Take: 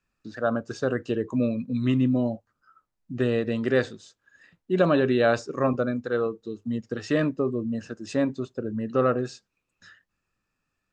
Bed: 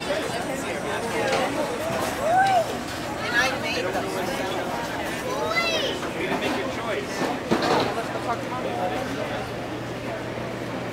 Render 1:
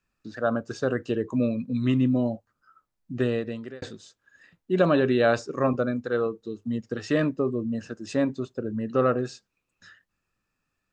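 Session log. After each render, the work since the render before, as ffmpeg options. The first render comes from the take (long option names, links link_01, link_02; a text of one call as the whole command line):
ffmpeg -i in.wav -filter_complex "[0:a]asplit=2[link_01][link_02];[link_01]atrim=end=3.82,asetpts=PTS-STARTPTS,afade=type=out:start_time=3.21:duration=0.61[link_03];[link_02]atrim=start=3.82,asetpts=PTS-STARTPTS,afade=type=in:duration=0.004:curve=hsin[link_04];[link_03][link_04]concat=n=2:v=0:a=1" out.wav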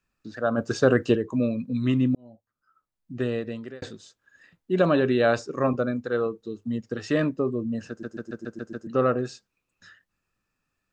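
ffmpeg -i in.wav -filter_complex "[0:a]asplit=3[link_01][link_02][link_03];[link_01]afade=type=out:start_time=0.57:duration=0.02[link_04];[link_02]acontrast=87,afade=type=in:start_time=0.57:duration=0.02,afade=type=out:start_time=1.15:duration=0.02[link_05];[link_03]afade=type=in:start_time=1.15:duration=0.02[link_06];[link_04][link_05][link_06]amix=inputs=3:normalize=0,asplit=9[link_07][link_08][link_09][link_10][link_11][link_12][link_13][link_14][link_15];[link_07]atrim=end=2.15,asetpts=PTS-STARTPTS,afade=type=out:start_time=2.146:duration=0.004:curve=hsin[link_16];[link_08]atrim=start=2.15:end=8.032,asetpts=PTS-STARTPTS,afade=type=in:duration=1.42[link_17];[link_09]atrim=start=7.888:end=8.032[link_18];[link_10]atrim=start=7.888:end=8.032[link_19];[link_11]atrim=start=7.888:end=8.032[link_20];[link_12]atrim=start=7.888:end=8.032[link_21];[link_13]atrim=start=7.888:end=8.032[link_22];[link_14]atrim=start=7.888:end=8.032[link_23];[link_15]atrim=start=8.868[link_24];[link_16][link_17]concat=n=2:v=0:a=1[link_25];[link_25][link_18]acrossfade=duration=0.004:curve1=hsin:curve2=hsin[link_26];[link_26][link_19]acrossfade=duration=0.004:curve1=hsin:curve2=hsin[link_27];[link_27][link_20]acrossfade=duration=0.004:curve1=hsin:curve2=hsin[link_28];[link_28][link_21]acrossfade=duration=0.004:curve1=hsin:curve2=hsin[link_29];[link_29][link_22]acrossfade=duration=0.004:curve1=hsin:curve2=hsin[link_30];[link_30][link_23]acrossfade=duration=0.004:curve1=hsin:curve2=hsin[link_31];[link_31][link_24]acrossfade=duration=0.004:curve1=hsin:curve2=hsin" out.wav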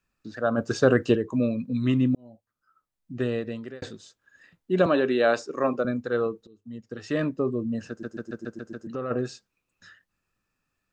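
ffmpeg -i in.wav -filter_complex "[0:a]asettb=1/sr,asplit=3[link_01][link_02][link_03];[link_01]atrim=end=4.864[link_04];[link_02]atrim=start=4.86:end=5.85,asetpts=PTS-STARTPTS,afade=type=in:duration=0.004:curve=qsin,afade=type=out:start_time=0.986:duration=0.004:curve=qsin,highpass=250[link_05];[link_03]atrim=start=5.846[link_06];[link_04][link_05]acrossfade=duration=0.004:curve1=hsin:curve2=qsin[link_07];[link_07][link_06]acrossfade=duration=0.004:curve1=qsin:curve2=hsin,asplit=3[link_08][link_09][link_10];[link_08]afade=type=out:start_time=8.54:duration=0.02[link_11];[link_09]acompressor=threshold=-32dB:ratio=2.5:attack=3.2:release=140:knee=1:detection=peak,afade=type=in:start_time=8.54:duration=0.02,afade=type=out:start_time=9.1:duration=0.02[link_12];[link_10]afade=type=in:start_time=9.1:duration=0.02[link_13];[link_11][link_12][link_13]amix=inputs=3:normalize=0,asplit=2[link_14][link_15];[link_14]atrim=end=6.47,asetpts=PTS-STARTPTS,afade=type=out:start_time=6.466:duration=0.004:curve=hsin:silence=0.0668344[link_16];[link_15]atrim=start=6.47,asetpts=PTS-STARTPTS,afade=type=in:duration=1.02:silence=0.0668344[link_17];[link_16][link_17]concat=n=2:v=0:a=1" out.wav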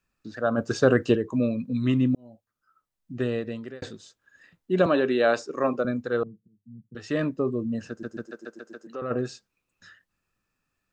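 ffmpeg -i in.wav -filter_complex "[0:a]asettb=1/sr,asplit=3[link_01][link_02][link_03];[link_01]atrim=end=6.234[link_04];[link_02]atrim=start=6.23:end=6.95,asetpts=PTS-STARTPTS,afade=type=in:duration=0.004:curve=qsin,afade=type=out:start_time=0.716:duration=0.004:curve=qsin,asuperpass=centerf=150:order=4:qfactor=1.6[link_05];[link_03]atrim=start=6.946[link_06];[link_04][link_05]acrossfade=duration=0.004:curve1=hsin:curve2=qsin[link_07];[link_07][link_06]acrossfade=duration=0.004:curve1=qsin:curve2=hsin,asettb=1/sr,asplit=3[link_08][link_09][link_10];[link_08]atrim=end=8.264[link_11];[link_09]atrim=start=8.26:end=9.02,asetpts=PTS-STARTPTS,afade=type=in:duration=0.004:curve=qsin,afade=type=out:start_time=0.756:duration=0.004:curve=qsin,highpass=400[link_12];[link_10]atrim=start=9.016[link_13];[link_11][link_12]acrossfade=duration=0.004:curve1=hsin:curve2=qsin[link_14];[link_14][link_13]acrossfade=duration=0.004:curve1=qsin:curve2=hsin" out.wav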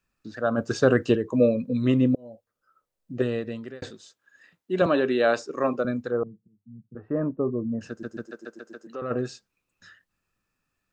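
ffmpeg -i in.wav -filter_complex "[0:a]asettb=1/sr,asplit=3[link_01][link_02][link_03];[link_01]atrim=end=1.314[link_04];[link_02]atrim=start=1.31:end=3.22,asetpts=PTS-STARTPTS,afade=type=in:duration=0.004:curve=qsin,afade=type=out:start_time=1.906:duration=0.004:curve=qsin,equalizer=frequency=510:width=2:gain=12.5[link_05];[link_03]atrim=start=3.216[link_06];[link_04][link_05]acrossfade=duration=0.004:curve1=hsin:curve2=qsin[link_07];[link_07][link_06]acrossfade=duration=0.004:curve1=qsin:curve2=hsin,asettb=1/sr,asplit=3[link_08][link_09][link_10];[link_08]atrim=end=3.904[link_11];[link_09]atrim=start=3.9:end=4.82,asetpts=PTS-STARTPTS,afade=type=in:duration=0.004:curve=qsin,afade=type=out:start_time=0.916:duration=0.004:curve=qsin,highpass=frequency=280:poles=1[link_12];[link_10]atrim=start=4.816[link_13];[link_11][link_12]acrossfade=duration=0.004:curve1=hsin:curve2=qsin[link_14];[link_14][link_13]acrossfade=duration=0.004:curve1=qsin:curve2=hsin,asplit=3[link_15][link_16][link_17];[link_15]afade=type=out:start_time=6.1:duration=0.02[link_18];[link_16]lowpass=frequency=1200:width=0.5412,lowpass=frequency=1200:width=1.3066,afade=type=in:start_time=6.1:duration=0.02,afade=type=out:start_time=7.8:duration=0.02[link_19];[link_17]afade=type=in:start_time=7.8:duration=0.02[link_20];[link_18][link_19][link_20]amix=inputs=3:normalize=0" out.wav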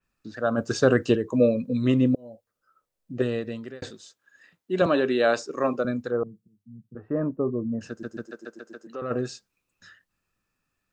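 ffmpeg -i in.wav -af "adynamicequalizer=threshold=0.00501:dfrequency=3900:dqfactor=0.7:tfrequency=3900:tqfactor=0.7:attack=5:release=100:ratio=0.375:range=2:mode=boostabove:tftype=highshelf" out.wav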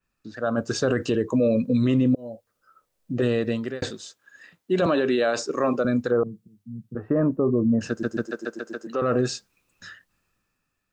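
ffmpeg -i in.wav -af "dynaudnorm=framelen=200:gausssize=9:maxgain=9dB,alimiter=limit=-13.5dB:level=0:latency=1:release=44" out.wav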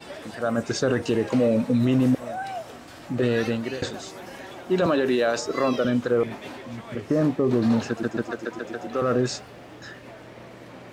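ffmpeg -i in.wav -i bed.wav -filter_complex "[1:a]volume=-13dB[link_01];[0:a][link_01]amix=inputs=2:normalize=0" out.wav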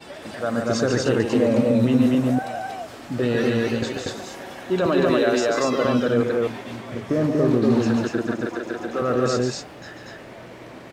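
ffmpeg -i in.wav -af "aecho=1:1:142.9|239.1:0.501|0.891" out.wav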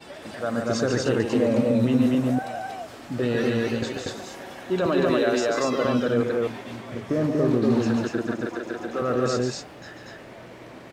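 ffmpeg -i in.wav -af "volume=-2.5dB" out.wav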